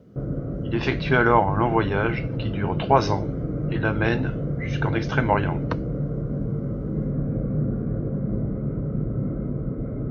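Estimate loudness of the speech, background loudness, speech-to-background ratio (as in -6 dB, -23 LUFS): -24.0 LUFS, -28.0 LUFS, 4.0 dB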